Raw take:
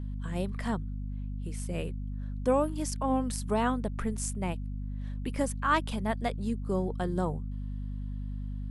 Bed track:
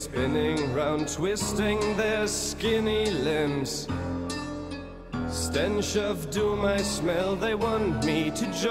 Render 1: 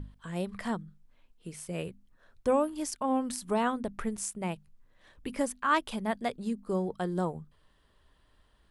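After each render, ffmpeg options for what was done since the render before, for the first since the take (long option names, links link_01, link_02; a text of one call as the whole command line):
ffmpeg -i in.wav -af "bandreject=frequency=50:width_type=h:width=6,bandreject=frequency=100:width_type=h:width=6,bandreject=frequency=150:width_type=h:width=6,bandreject=frequency=200:width_type=h:width=6,bandreject=frequency=250:width_type=h:width=6" out.wav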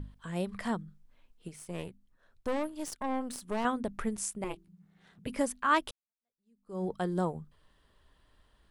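ffmpeg -i in.wav -filter_complex "[0:a]asettb=1/sr,asplit=3[link_01][link_02][link_03];[link_01]atrim=end=1.484[link_04];[link_02]atrim=start=1.48:end=3.65,asetpts=PTS-STARTPTS,afade=type=in:duration=0.004:curve=qsin,afade=type=out:start_time=2.166:duration=0.004:curve=qsin,aeval=exprs='(tanh(25.1*val(0)+0.8)-tanh(0.8))/25.1':channel_layout=same[link_05];[link_03]atrim=start=3.646[link_06];[link_04][link_05]acrossfade=duration=0.004:curve1=hsin:curve2=qsin[link_07];[link_07][link_06]acrossfade=duration=0.004:curve1=qsin:curve2=hsin,asettb=1/sr,asplit=3[link_08][link_09][link_10];[link_08]atrim=end=4.444[link_11];[link_09]atrim=start=4.44:end=5.27,asetpts=PTS-STARTPTS,afade=type=in:duration=0.004:curve=qsin,afade=type=out:start_time=0.826:duration=0.004:curve=qsin,aeval=exprs='val(0)*sin(2*PI*180*n/s)':channel_layout=same[link_12];[link_10]atrim=start=5.266[link_13];[link_11][link_12]acrossfade=duration=0.004:curve1=hsin:curve2=qsin[link_14];[link_14][link_13]acrossfade=duration=0.004:curve1=qsin:curve2=hsin,asplit=2[link_15][link_16];[link_15]atrim=end=5.91,asetpts=PTS-STARTPTS,afade=type=out:start_time=5.906:duration=0.004:curve=hsin[link_17];[link_16]atrim=start=5.91,asetpts=PTS-STARTPTS,afade=type=in:duration=0.93:curve=exp[link_18];[link_17][link_18]concat=n=2:v=0:a=1" out.wav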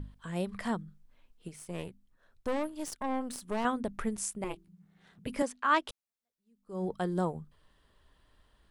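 ffmpeg -i in.wav -filter_complex "[0:a]asettb=1/sr,asplit=3[link_01][link_02][link_03];[link_01]atrim=end=5.424[link_04];[link_02]atrim=start=5.42:end=5.89,asetpts=PTS-STARTPTS,afade=type=in:duration=0.004:curve=qsin,afade=type=out:start_time=0.466:duration=0.004:curve=qsin,acrossover=split=220 8000:gain=0.112 1 0.126[link_05][link_06][link_07];[link_05][link_06][link_07]amix=inputs=3:normalize=0[link_08];[link_03]atrim=start=5.886[link_09];[link_04][link_08]acrossfade=duration=0.004:curve1=hsin:curve2=qsin[link_10];[link_10][link_09]acrossfade=duration=0.004:curve1=qsin:curve2=hsin" out.wav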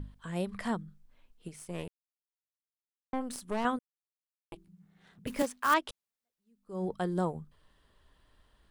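ffmpeg -i in.wav -filter_complex "[0:a]asettb=1/sr,asplit=3[link_01][link_02][link_03];[link_01]atrim=end=5.274[link_04];[link_02]atrim=start=5.27:end=5.74,asetpts=PTS-STARTPTS,afade=type=in:duration=0.004:curve=qsin,afade=type=out:start_time=0.466:duration=0.004:curve=qsin,acrusher=bits=3:mode=log:mix=0:aa=0.000001[link_05];[link_03]atrim=start=5.736[link_06];[link_04][link_05]acrossfade=duration=0.004:curve1=hsin:curve2=qsin[link_07];[link_07][link_06]acrossfade=duration=0.004:curve1=qsin:curve2=hsin,asplit=5[link_08][link_09][link_10][link_11][link_12];[link_08]atrim=end=1.88,asetpts=PTS-STARTPTS,afade=type=out:start_time=1.876:duration=0.004:curve=hsin[link_13];[link_09]atrim=start=1.88:end=3.13,asetpts=PTS-STARTPTS,volume=0[link_14];[link_10]atrim=start=3.13:end=3.79,asetpts=PTS-STARTPTS,afade=type=in:duration=0.004:curve=hsin,afade=type=out:start_time=0.656:duration=0.004:curve=hsin[link_15];[link_11]atrim=start=3.79:end=4.52,asetpts=PTS-STARTPTS,volume=0[link_16];[link_12]atrim=start=4.52,asetpts=PTS-STARTPTS,afade=type=in:duration=0.004:curve=hsin[link_17];[link_13][link_14][link_15][link_16][link_17]concat=n=5:v=0:a=1" out.wav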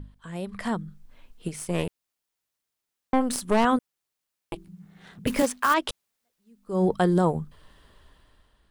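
ffmpeg -i in.wav -af "alimiter=limit=-23.5dB:level=0:latency=1:release=40,dynaudnorm=framelen=150:gausssize=11:maxgain=12dB" out.wav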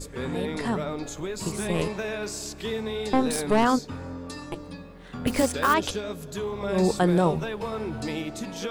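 ffmpeg -i in.wav -i bed.wav -filter_complex "[1:a]volume=-5.5dB[link_01];[0:a][link_01]amix=inputs=2:normalize=0" out.wav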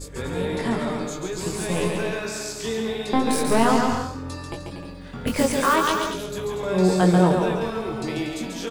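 ffmpeg -i in.wav -filter_complex "[0:a]asplit=2[link_01][link_02];[link_02]adelay=22,volume=-4.5dB[link_03];[link_01][link_03]amix=inputs=2:normalize=0,aecho=1:1:140|238|306.6|354.6|388.2:0.631|0.398|0.251|0.158|0.1" out.wav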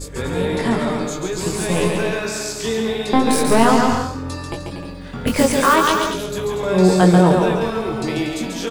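ffmpeg -i in.wav -af "volume=5.5dB,alimiter=limit=-2dB:level=0:latency=1" out.wav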